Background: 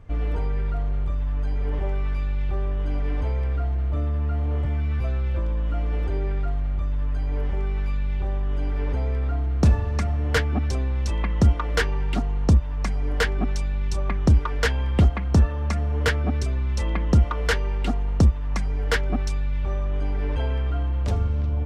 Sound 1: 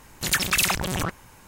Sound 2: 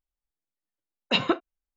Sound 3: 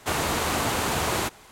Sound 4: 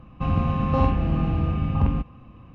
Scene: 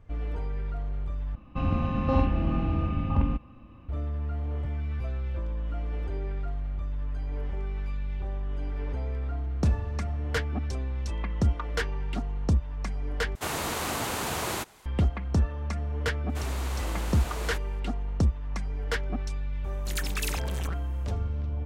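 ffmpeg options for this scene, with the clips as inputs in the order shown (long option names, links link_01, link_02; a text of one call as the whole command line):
ffmpeg -i bed.wav -i cue0.wav -i cue1.wav -i cue2.wav -i cue3.wav -filter_complex "[3:a]asplit=2[link_01][link_02];[0:a]volume=-7dB[link_03];[4:a]aecho=1:1:3.4:0.4[link_04];[link_01]highshelf=frequency=9700:gain=3.5[link_05];[link_03]asplit=3[link_06][link_07][link_08];[link_06]atrim=end=1.354[link_09];[link_04]atrim=end=2.54,asetpts=PTS-STARTPTS,volume=-3.5dB[link_10];[link_07]atrim=start=3.886:end=13.354[link_11];[link_05]atrim=end=1.51,asetpts=PTS-STARTPTS,volume=-5.5dB[link_12];[link_08]atrim=start=14.856[link_13];[link_02]atrim=end=1.51,asetpts=PTS-STARTPTS,volume=-13dB,afade=type=in:duration=0.004:curve=hsin,afade=type=out:start_time=1.506:duration=0.004:curve=hsin,adelay=16290[link_14];[1:a]atrim=end=1.47,asetpts=PTS-STARTPTS,volume=-12dB,afade=type=in:duration=0.004:curve=hsin,afade=type=out:start_time=1.466:duration=0.004:curve=hsin,adelay=19640[link_15];[link_09][link_10]acrossfade=duration=0.004:curve1=hsin:curve2=hsin[link_16];[link_16][link_11]acrossfade=duration=0.004:curve1=hsin:curve2=hsin[link_17];[link_17][link_12]acrossfade=duration=0.004:curve1=hsin:curve2=hsin[link_18];[link_18][link_13]acrossfade=duration=0.004:curve1=hsin:curve2=hsin[link_19];[link_19][link_14][link_15]amix=inputs=3:normalize=0" out.wav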